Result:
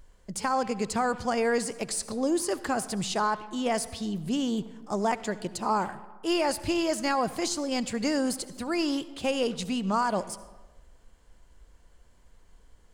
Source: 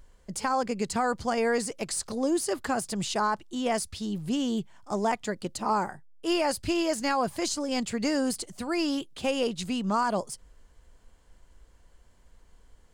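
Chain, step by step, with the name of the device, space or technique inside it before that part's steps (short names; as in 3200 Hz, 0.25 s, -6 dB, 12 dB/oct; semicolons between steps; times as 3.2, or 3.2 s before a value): saturated reverb return (on a send at -13 dB: reverb RT60 1.1 s, pre-delay 62 ms + soft clip -25 dBFS, distortion -11 dB)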